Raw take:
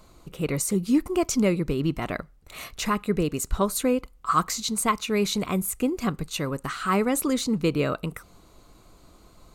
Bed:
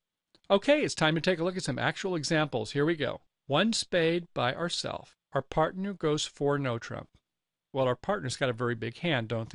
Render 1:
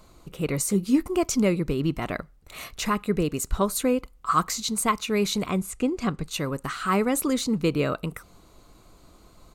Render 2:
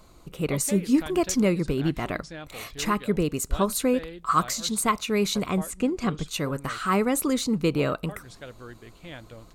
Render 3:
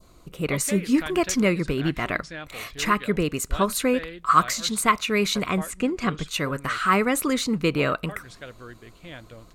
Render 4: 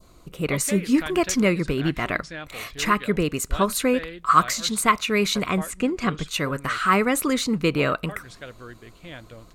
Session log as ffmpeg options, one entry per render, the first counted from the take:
-filter_complex "[0:a]asplit=3[a][b][c];[a]afade=t=out:st=0.58:d=0.02[d];[b]asplit=2[e][f];[f]adelay=15,volume=-10.5dB[g];[e][g]amix=inputs=2:normalize=0,afade=t=in:st=0.58:d=0.02,afade=t=out:st=1.02:d=0.02[h];[c]afade=t=in:st=1.02:d=0.02[i];[d][h][i]amix=inputs=3:normalize=0,asettb=1/sr,asplit=3[j][k][l];[j]atrim=end=5.504[m];[k]atrim=start=5.5:end=6.26,asetpts=PTS-STARTPTS,afade=t=in:d=0.004:c=qsin,afade=t=out:st=0.756:d=0.004:c=qsin,lowpass=7.5k[n];[l]atrim=start=6.256[o];[m][n]acrossfade=d=0.004:c1=hsin:c2=qsin[p];[p][o]acrossfade=d=0.004:c1=qsin:c2=hsin"
-filter_complex "[1:a]volume=-13dB[a];[0:a][a]amix=inputs=2:normalize=0"
-af "bandreject=f=840:w=14,adynamicequalizer=threshold=0.00794:dfrequency=1900:dqfactor=0.77:tfrequency=1900:tqfactor=0.77:attack=5:release=100:ratio=0.375:range=4:mode=boostabove:tftype=bell"
-af "volume=1dB"

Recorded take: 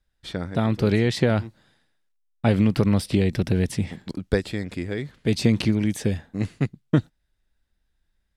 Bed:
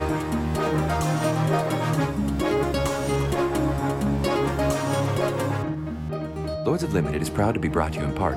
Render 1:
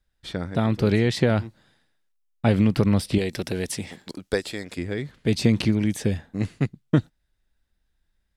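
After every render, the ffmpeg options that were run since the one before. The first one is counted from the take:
-filter_complex "[0:a]asettb=1/sr,asplit=3[a][b][c];[a]atrim=end=3.184[d];[b]atrim=start=3.18:end=4.78,asetpts=PTS-STARTPTS,afade=t=in:d=0.004:c=qsin,afade=t=out:st=1.596:d=0.004:c=qsin,bass=f=250:g=-11,treble=f=4k:g=6[e];[c]atrim=start=4.776[f];[d][e]acrossfade=d=0.004:c1=hsin:c2=qsin[g];[g][f]acrossfade=d=0.004:c1=qsin:c2=hsin"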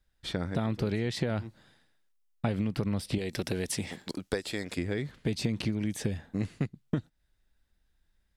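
-af "acompressor=threshold=-27dB:ratio=6"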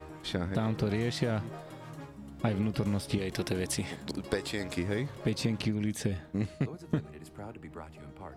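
-filter_complex "[1:a]volume=-21.5dB[a];[0:a][a]amix=inputs=2:normalize=0"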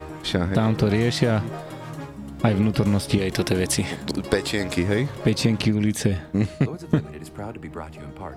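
-af "volume=10dB"

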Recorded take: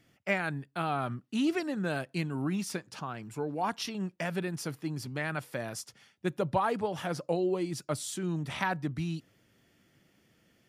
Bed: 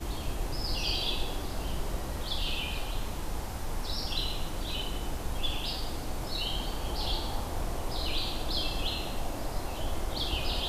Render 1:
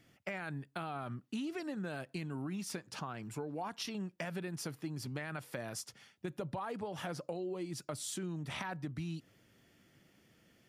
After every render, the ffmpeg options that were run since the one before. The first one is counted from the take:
-af "alimiter=limit=-23dB:level=0:latency=1:release=24,acompressor=threshold=-37dB:ratio=6"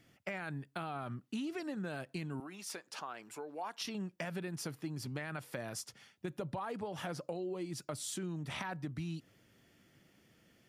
-filter_complex "[0:a]asettb=1/sr,asplit=3[a][b][c];[a]atrim=end=2.404[d];[b]atrim=start=2.4:end=3.81,asetpts=PTS-STARTPTS,afade=t=in:d=0.004:c=qsin,afade=t=out:st=1.406:d=0.004:c=qsin,highpass=430[e];[c]atrim=start=3.806[f];[d][e]acrossfade=d=0.004:c1=hsin:c2=qsin[g];[g][f]acrossfade=d=0.004:c1=qsin:c2=hsin"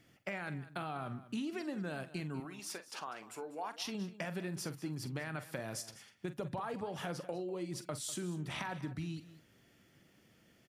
-filter_complex "[0:a]asplit=2[a][b];[b]adelay=45,volume=-12.5dB[c];[a][c]amix=inputs=2:normalize=0,aecho=1:1:197:0.158"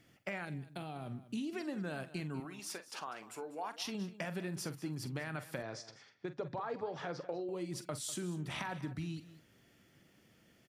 -filter_complex "[0:a]asettb=1/sr,asplit=3[a][b][c];[a]atrim=end=0.454[d];[b]atrim=start=0.45:end=1.53,asetpts=PTS-STARTPTS,afade=t=in:d=0.004:c=qsin,afade=t=out:st=1.076:d=0.004:c=qsin,equalizer=f=1.3k:w=1.2:g=-11.5[e];[c]atrim=start=1.526[f];[d][e]acrossfade=d=0.004:c1=hsin:c2=qsin[g];[g][f]acrossfade=d=0.004:c1=qsin:c2=hsin,asettb=1/sr,asplit=3[h][i][j];[h]atrim=end=5.624[k];[i]atrim=start=5.62:end=7.49,asetpts=PTS-STARTPTS,afade=t=in:d=0.004:c=qsin,afade=t=out:st=1.866:d=0.004:c=qsin,highpass=120,equalizer=f=200:t=q:w=4:g=-9,equalizer=f=440:t=q:w=4:g=3,equalizer=f=2.9k:t=q:w=4:g=-8,lowpass=f=5.4k:w=0.5412,lowpass=f=5.4k:w=1.3066[l];[j]atrim=start=7.486[m];[k][l]acrossfade=d=0.004:c1=hsin:c2=qsin[n];[n][m]acrossfade=d=0.004:c1=qsin:c2=hsin"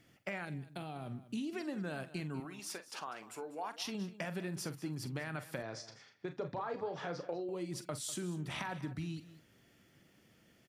-filter_complex "[0:a]asettb=1/sr,asplit=3[a][b][c];[a]atrim=end=5.734[d];[b]atrim=start=5.73:end=7.34,asetpts=PTS-STARTPTS,afade=t=in:d=0.004:c=qsin,afade=t=out:st=1.606:d=0.004:c=qsin,asplit=2[e][f];[f]adelay=35,volume=-9dB[g];[e][g]amix=inputs=2:normalize=0,atrim=end_sample=71001[h];[c]atrim=start=7.336[i];[d][h]acrossfade=d=0.004:c1=hsin:c2=qsin[j];[j][i]acrossfade=d=0.004:c1=qsin:c2=hsin"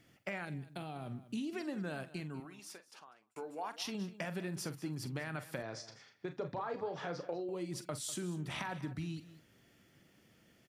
-filter_complex "[0:a]asplit=2[a][b];[a]atrim=end=3.36,asetpts=PTS-STARTPTS,afade=t=out:st=1.9:d=1.46[c];[b]atrim=start=3.36,asetpts=PTS-STARTPTS,afade=t=in:d=0.004:c=hsin[d];[c][d]concat=n=2:v=0:a=1"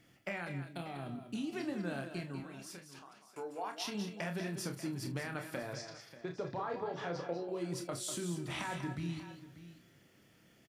-filter_complex "[0:a]asplit=2[a][b];[b]adelay=29,volume=-7dB[c];[a][c]amix=inputs=2:normalize=0,aecho=1:1:194|588:0.335|0.178"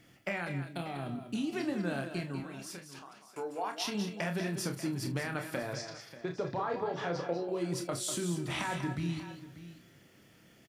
-af "volume=4.5dB"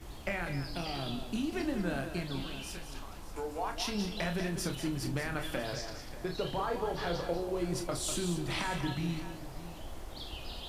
-filter_complex "[1:a]volume=-11.5dB[a];[0:a][a]amix=inputs=2:normalize=0"

